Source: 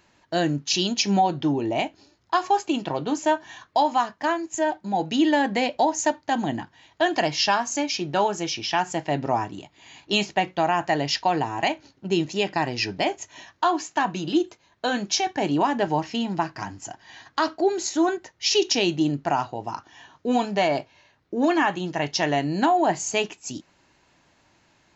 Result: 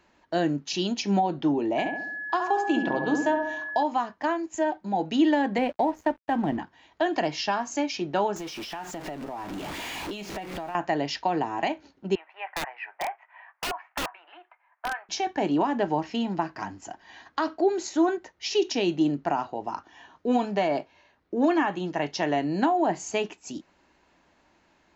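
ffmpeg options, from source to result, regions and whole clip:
-filter_complex "[0:a]asettb=1/sr,asplit=3[s0][s1][s2];[s0]atrim=end=1.784[s3];[s1]atrim=start=1.78:end=3.83,asetpts=PTS-STARTPTS,afade=t=in:d=0.004:c=qsin,afade=t=out:st=2.046:d=0.004:c=qsin,asplit=2[s4][s5];[s5]adelay=69,lowpass=f=1300:p=1,volume=0.631,asplit=2[s6][s7];[s7]adelay=69,lowpass=f=1300:p=1,volume=0.54,asplit=2[s8][s9];[s9]adelay=69,lowpass=f=1300:p=1,volume=0.54,asplit=2[s10][s11];[s11]adelay=69,lowpass=f=1300:p=1,volume=0.54,asplit=2[s12][s13];[s13]adelay=69,lowpass=f=1300:p=1,volume=0.54,asplit=2[s14][s15];[s15]adelay=69,lowpass=f=1300:p=1,volume=0.54,asplit=2[s16][s17];[s17]adelay=69,lowpass=f=1300:p=1,volume=0.54[s18];[s4][s6][s8][s10][s12][s14][s16][s18]amix=inputs=8:normalize=0,atrim=end_sample=90405,aeval=exprs='val(0)+0.0316*sin(2*PI*1700*n/s)':c=same[s19];[s2]atrim=start=3.826[s20];[s3][s19]acrossfade=d=0.004:c1=hsin:c2=qsin[s21];[s21][s20]acrossfade=d=0.004:c1=qsin:c2=hsin,asettb=1/sr,asplit=3[s22][s23][s24];[s22]atrim=end=5.584[s25];[s23]atrim=start=5.58:end=6.58,asetpts=PTS-STARTPTS,afade=t=in:d=0.004:c=qsin,afade=t=out:st=0.996:d=0.004:c=qsin,lowpass=2700,equalizer=f=87:w=0.89:g=11.5,aeval=exprs='sgn(val(0))*max(abs(val(0))-0.00708,0)':c=same[s26];[s24]atrim=start=6.576[s27];[s25][s26]acrossfade=d=0.004:c1=hsin:c2=qsin[s28];[s28][s27]acrossfade=d=0.004:c1=qsin:c2=hsin,asettb=1/sr,asplit=3[s29][s30][s31];[s29]atrim=end=8.364[s32];[s30]atrim=start=8.36:end=10.75,asetpts=PTS-STARTPTS,afade=t=in:d=0.004:c=qsin,afade=t=out:st=2.386:d=0.004:c=qsin,aeval=exprs='val(0)+0.5*0.0473*sgn(val(0))':c=same,acompressor=threshold=0.0316:ratio=16:attack=3.2:release=140:knee=1:detection=peak[s33];[s31]atrim=start=10.746[s34];[s32][s33]acrossfade=d=0.004:c1=hsin:c2=qsin[s35];[s35][s34]acrossfade=d=0.004:c1=qsin:c2=hsin,asettb=1/sr,asplit=3[s36][s37][s38];[s36]atrim=end=12.154[s39];[s37]atrim=start=12.15:end=15.09,asetpts=PTS-STARTPTS,afade=t=in:d=0.004:c=qsin,afade=t=out:st=2.936:d=0.004:c=qsin,asuperpass=centerf=1300:order=8:qfactor=0.83,aeval=exprs='(mod(9.44*val(0)+1,2)-1)/9.44':c=same[s40];[s38]atrim=start=15.086[s41];[s39][s40]acrossfade=d=0.004:c1=hsin:c2=qsin[s42];[s42][s41]acrossfade=d=0.004:c1=qsin:c2=hsin,equalizer=f=120:t=o:w=0.48:g=-15,acrossover=split=410[s43][s44];[s44]acompressor=threshold=0.0708:ratio=3[s45];[s43][s45]amix=inputs=2:normalize=0,highshelf=f=3200:g=-9.5"

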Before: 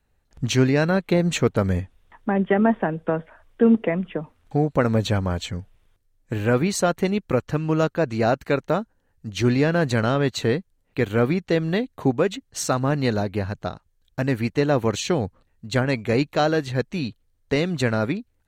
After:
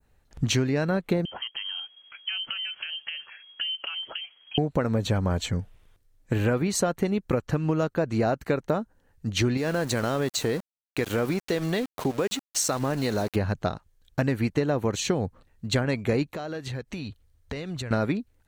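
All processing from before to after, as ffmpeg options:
-filter_complex "[0:a]asettb=1/sr,asplit=3[s0][s1][s2];[s0]atrim=end=1.254[s3];[s1]atrim=start=1.25:end=4.58,asetpts=PTS-STARTPTS,afade=t=in:d=0.004:c=qsin,afade=t=out:st=3.326:d=0.004:c=qsin,acompressor=threshold=0.0316:ratio=16:attack=3.2:release=140:knee=1:detection=peak,lowpass=f=2800:t=q:w=0.5098,lowpass=f=2800:t=q:w=0.6013,lowpass=f=2800:t=q:w=0.9,lowpass=f=2800:t=q:w=2.563,afreqshift=-3300[s4];[s2]atrim=start=4.576[s5];[s3][s4]acrossfade=d=0.004:c1=hsin:c2=qsin[s6];[s6][s5]acrossfade=d=0.004:c1=qsin:c2=hsin,asettb=1/sr,asplit=3[s7][s8][s9];[s7]atrim=end=9.574[s10];[s8]atrim=start=9.57:end=13.36,asetpts=PTS-STARTPTS,afade=t=in:d=0.004:c=qsin,afade=t=out:st=3.786:d=0.004:c=qsin,bass=f=250:g=-5,treble=f=4000:g=7,acompressor=threshold=0.0501:ratio=2.5:attack=3.2:release=140:knee=1:detection=peak,aeval=exprs='val(0)*gte(abs(val(0)),0.0133)':c=same[s11];[s9]atrim=start=13.356[s12];[s10][s11]acrossfade=d=0.004:c1=hsin:c2=qsin[s13];[s13][s12]acrossfade=d=0.004:c1=qsin:c2=hsin,asettb=1/sr,asplit=3[s14][s15][s16];[s14]atrim=end=16.304[s17];[s15]atrim=start=16.3:end=17.91,asetpts=PTS-STARTPTS,afade=t=in:d=0.004:c=qsin,afade=t=out:st=1.606:d=0.004:c=qsin,highpass=44,asubboost=boost=10.5:cutoff=88,acompressor=threshold=0.0224:ratio=16:attack=3.2:release=140:knee=1:detection=peak[s18];[s16]atrim=start=17.906[s19];[s17][s18]acrossfade=d=0.004:c1=hsin:c2=qsin[s20];[s20][s19]acrossfade=d=0.004:c1=qsin:c2=hsin,adynamicequalizer=threshold=0.00891:dfrequency=3100:dqfactor=0.72:tfrequency=3100:tqfactor=0.72:attack=5:release=100:ratio=0.375:range=2.5:mode=cutabove:tftype=bell,acompressor=threshold=0.0631:ratio=10,volume=1.5"

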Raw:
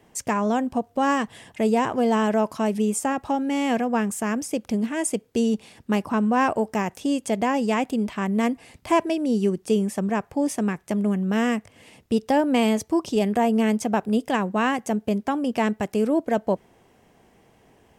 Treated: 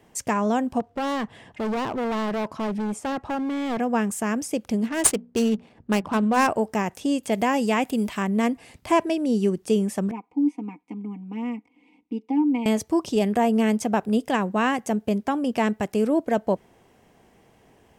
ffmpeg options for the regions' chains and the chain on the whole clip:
-filter_complex "[0:a]asettb=1/sr,asplit=3[s0][s1][s2];[s0]atrim=end=0.804[s3];[s1]atrim=start=0.8:end=3.8,asetpts=PTS-STARTPTS,afade=t=in:d=0.004:c=qsin,afade=t=out:st=2.996:d=0.004:c=qsin,aemphasis=mode=reproduction:type=75fm,asoftclip=type=hard:threshold=0.0631[s4];[s2]atrim=start=3.796[s5];[s3][s4]acrossfade=d=0.004:c1=hsin:c2=qsin[s6];[s6][s5]acrossfade=d=0.004:c1=qsin:c2=hsin,asettb=1/sr,asplit=3[s7][s8][s9];[s7]atrim=end=4.884[s10];[s8]atrim=start=4.88:end=6.47,asetpts=PTS-STARTPTS,afade=t=in:d=0.004:c=qsin,afade=t=out:st=1.586:d=0.004:c=qsin,aemphasis=mode=production:type=75kf,bandreject=f=60:t=h:w=6,bandreject=f=120:t=h:w=6,bandreject=f=180:t=h:w=6,bandreject=f=240:t=h:w=6,adynamicsmooth=sensitivity=4:basefreq=880[s11];[s9]atrim=start=6.466[s12];[s10][s11]acrossfade=d=0.004:c1=hsin:c2=qsin[s13];[s13][s12]acrossfade=d=0.004:c1=qsin:c2=hsin,asettb=1/sr,asplit=3[s14][s15][s16];[s14]atrim=end=7.234[s17];[s15]atrim=start=7.23:end=8.23,asetpts=PTS-STARTPTS,afade=t=in:d=0.004:c=qsin,afade=t=out:st=0.996:d=0.004:c=qsin,acrossover=split=3500[s18][s19];[s19]acompressor=threshold=0.00355:ratio=4:attack=1:release=60[s20];[s18][s20]amix=inputs=2:normalize=0,aemphasis=mode=production:type=75kf[s21];[s16]atrim=start=8.226[s22];[s17][s21]acrossfade=d=0.004:c1=hsin:c2=qsin[s23];[s23][s22]acrossfade=d=0.004:c1=qsin:c2=hsin,asettb=1/sr,asplit=3[s24][s25][s26];[s24]atrim=end=10.114[s27];[s25]atrim=start=10.11:end=12.66,asetpts=PTS-STARTPTS,afade=t=in:d=0.004:c=qsin,afade=t=out:st=2.546:d=0.004:c=qsin,asplit=3[s28][s29][s30];[s28]bandpass=f=300:t=q:w=8,volume=1[s31];[s29]bandpass=f=870:t=q:w=8,volume=0.501[s32];[s30]bandpass=f=2240:t=q:w=8,volume=0.355[s33];[s31][s32][s33]amix=inputs=3:normalize=0,equalizer=f=520:t=o:w=0.35:g=7,aecho=1:1:4.1:0.93,atrim=end_sample=112455[s34];[s26]atrim=start=12.656[s35];[s27][s34]acrossfade=d=0.004:c1=hsin:c2=qsin[s36];[s36][s35]acrossfade=d=0.004:c1=qsin:c2=hsin"

